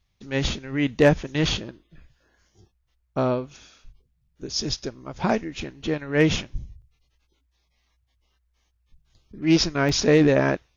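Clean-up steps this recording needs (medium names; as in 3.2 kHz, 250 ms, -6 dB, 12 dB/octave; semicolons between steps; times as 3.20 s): clip repair -8.5 dBFS; interpolate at 6.82/8.32/9.89 s, 1.3 ms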